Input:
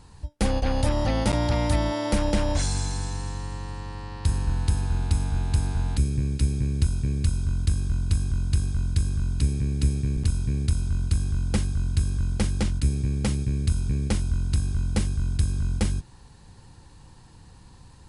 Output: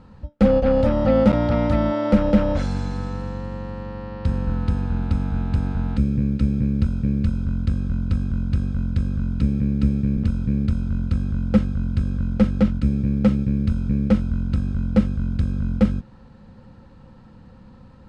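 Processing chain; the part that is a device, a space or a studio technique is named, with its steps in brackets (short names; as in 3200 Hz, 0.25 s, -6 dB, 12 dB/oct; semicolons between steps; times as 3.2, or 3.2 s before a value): inside a cardboard box (LPF 2800 Hz 12 dB/oct; small resonant body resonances 220/520/1300 Hz, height 14 dB, ringing for 50 ms)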